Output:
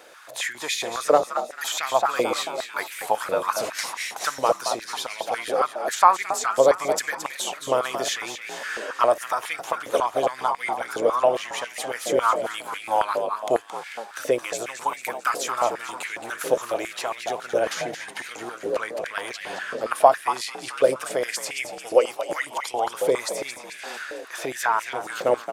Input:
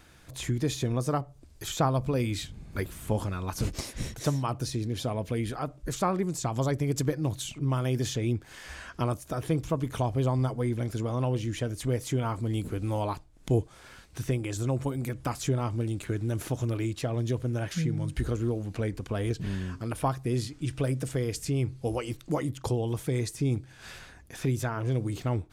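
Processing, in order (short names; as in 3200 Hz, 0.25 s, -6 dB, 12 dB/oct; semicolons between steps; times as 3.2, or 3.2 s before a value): frequency-shifting echo 0.221 s, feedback 52%, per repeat +55 Hz, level -9 dB; stepped high-pass 7.3 Hz 520–2100 Hz; gain +7 dB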